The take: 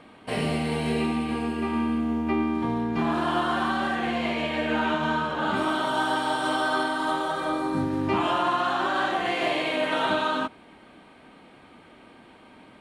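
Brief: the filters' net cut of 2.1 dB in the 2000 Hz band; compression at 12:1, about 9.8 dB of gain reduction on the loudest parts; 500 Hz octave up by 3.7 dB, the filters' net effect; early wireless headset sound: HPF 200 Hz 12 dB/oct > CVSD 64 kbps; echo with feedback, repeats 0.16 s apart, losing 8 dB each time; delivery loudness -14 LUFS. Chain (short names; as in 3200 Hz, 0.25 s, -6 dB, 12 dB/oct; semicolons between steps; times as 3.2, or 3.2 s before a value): bell 500 Hz +5.5 dB; bell 2000 Hz -3.5 dB; compressor 12:1, threshold -29 dBFS; HPF 200 Hz 12 dB/oct; feedback echo 0.16 s, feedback 40%, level -8 dB; CVSD 64 kbps; gain +19 dB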